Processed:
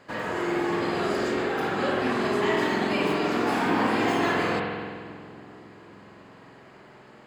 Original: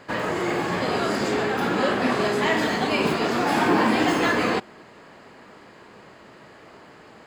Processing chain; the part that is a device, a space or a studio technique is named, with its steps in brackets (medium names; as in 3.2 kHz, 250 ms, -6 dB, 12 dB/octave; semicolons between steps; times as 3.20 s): dub delay into a spring reverb (filtered feedback delay 276 ms, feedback 77%, low-pass 1.6 kHz, level -20 dB; spring tank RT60 1.8 s, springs 46 ms, chirp 40 ms, DRR -0.5 dB); trim -6.5 dB